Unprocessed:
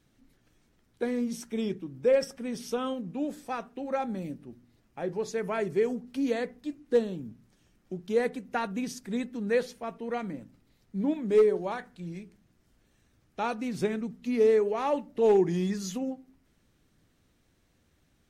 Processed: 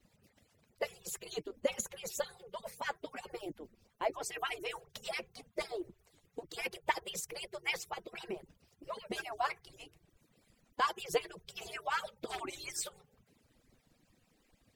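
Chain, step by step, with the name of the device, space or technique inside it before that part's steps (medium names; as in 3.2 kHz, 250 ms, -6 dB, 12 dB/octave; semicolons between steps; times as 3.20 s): harmonic-percussive separation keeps percussive; nightcore (tape speed +24%); trim +3 dB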